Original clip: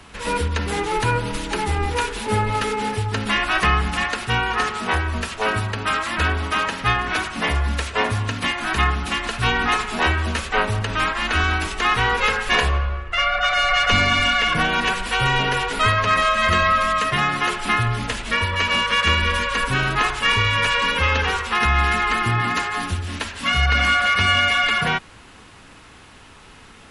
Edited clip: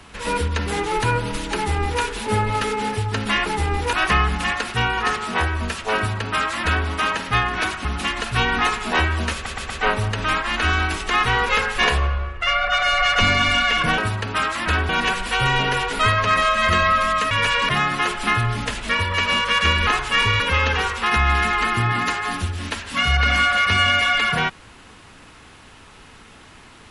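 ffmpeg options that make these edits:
-filter_complex "[0:a]asplit=13[a][b][c][d][e][f][g][h][i][j][k][l][m];[a]atrim=end=3.462[n];[b]atrim=start=1.548:end=2.022[o];[c]atrim=start=3.458:end=7.382[p];[d]atrim=start=8.918:end=10.532[q];[e]atrim=start=10.408:end=10.532[r];[f]atrim=start=10.408:end=10.532[s];[g]atrim=start=10.408:end=14.692[t];[h]atrim=start=5.488:end=6.402[u];[i]atrim=start=14.688:end=17.112[v];[j]atrim=start=20.508:end=20.892[w];[k]atrim=start=17.108:end=19.292[x];[l]atrim=start=19.978:end=20.512[y];[m]atrim=start=20.888[z];[n][o]acrossfade=d=0.004:c1=hsin:c2=hsin[aa];[aa][p]acrossfade=d=0.004:c1=hsin:c2=hsin[ab];[ab][q]acrossfade=d=0.004:c1=hsin:c2=hsin[ac];[ac][r]acrossfade=d=0.004:c1=hsin:c2=hsin[ad];[ad][s]acrossfade=d=0.004:c1=hsin:c2=hsin[ae];[ae][t]acrossfade=d=0.004:c1=hsin:c2=hsin[af];[af][u]acrossfade=d=0.004:c1=hsin:c2=hsin[ag];[ag][v]acrossfade=d=0.004:c1=hsin:c2=hsin[ah];[ah][w]acrossfade=d=0.004:c1=hsin:c2=hsin[ai];[ai][x]acrossfade=d=0.004:c1=hsin:c2=hsin[aj];[aj][y]acrossfade=d=0.004:c1=hsin:c2=hsin[ak];[ak][z]acrossfade=d=0.004:c1=hsin:c2=hsin"

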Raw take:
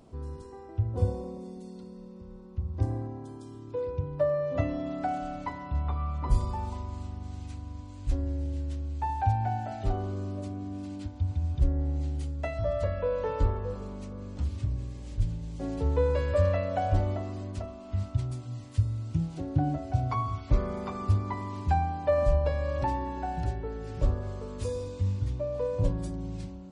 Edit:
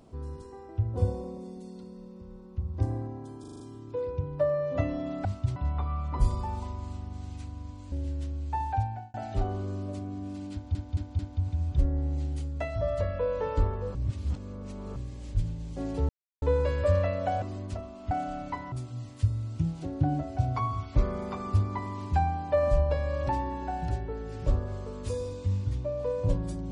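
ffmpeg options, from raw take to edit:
-filter_complex "[0:a]asplit=19[a][b][c][d][e][f][g][h][i][j][k][l][m][n][o][p][q][r][s];[a]atrim=end=3.442[t];[b]atrim=start=3.398:end=3.442[u];[c]atrim=start=3.398:end=3.442[v];[d]atrim=start=3.398:end=3.442[w];[e]atrim=start=3.398:end=3.442[x];[f]atrim=start=3.398:end=5.052[y];[g]atrim=start=17.958:end=18.272[z];[h]atrim=start=5.658:end=8.022[aa];[i]atrim=start=8.408:end=9.63,asetpts=PTS-STARTPTS,afade=t=out:st=0.742:d=0.48[ab];[j]atrim=start=9.63:end=11.242,asetpts=PTS-STARTPTS,afade=t=in:d=0.004:c=hsin[ac];[k]atrim=start=11.018:end=11.242[ad];[l]atrim=start=11.018:end=11.242[ae];[m]atrim=start=11.018:end=13.782[af];[n]atrim=start=13.778:end=14.792,asetpts=PTS-STARTPTS,areverse[ag];[o]atrim=start=14.788:end=15.92,asetpts=PTS-STARTPTS,afade=t=out:st=1.128:d=0.004:c=hsin,apad=pad_dur=0.33[ah];[p]atrim=start=15.92:end=16.922,asetpts=PTS-STARTPTS,afade=t=in:d=0.004:c=hsin[ai];[q]atrim=start=17.268:end=17.962[aj];[r]atrim=start=5.048:end=5.662[ak];[s]atrim=start=18.268[al];[t][u]acrossfade=d=0.004:c1=hsin:c2=hsin[am];[am][v]acrossfade=d=0.004:c1=hsin:c2=hsin[an];[an][w]acrossfade=d=0.004:c1=hsin:c2=hsin[ao];[ao][x]acrossfade=d=0.004:c1=hsin:c2=hsin[ap];[ap][y]acrossfade=d=0.004:c1=hsin:c2=hsin[aq];[aq][z]acrossfade=d=0.004:c1=hsin:c2=hsin[ar];[ar][aa]acrossfade=d=0.004:c1=hsin:c2=hsin[as];[ab][ac]concat=n=2:v=0:a=1[at];[as][at]acrossfade=d=0.004:c1=hsin:c2=hsin[au];[au][ad]acrossfade=d=0.004:c1=hsin:c2=hsin[av];[av][ae]acrossfade=d=0.004:c1=hsin:c2=hsin[aw];[aw][af]acrossfade=d=0.004:c1=hsin:c2=hsin[ax];[ax][ag]acrossfade=d=0.004:c1=hsin:c2=hsin[ay];[ah][ai]concat=n=2:v=0:a=1[az];[ay][az]acrossfade=d=0.004:c1=hsin:c2=hsin[ba];[ba][aj]acrossfade=d=0.004:c1=hsin:c2=hsin[bb];[bb][ak]acrossfade=d=0.004:c1=hsin:c2=hsin[bc];[bc][al]acrossfade=d=0.004:c1=hsin:c2=hsin"

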